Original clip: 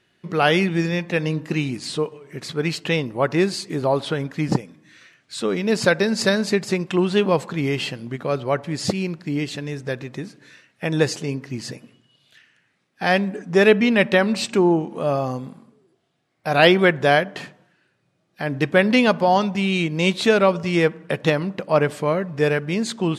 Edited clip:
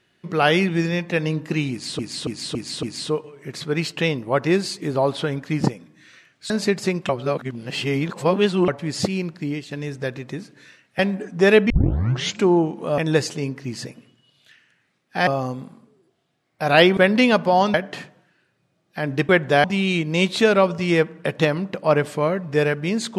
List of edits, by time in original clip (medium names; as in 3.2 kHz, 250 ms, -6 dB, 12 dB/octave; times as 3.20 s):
1.71–1.99 s: loop, 5 plays
5.38–6.35 s: delete
6.94–8.53 s: reverse
9.26–9.56 s: fade out, to -11.5 dB
10.84–13.13 s: move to 15.12 s
13.84 s: tape start 0.72 s
16.82–17.17 s: swap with 18.72–19.49 s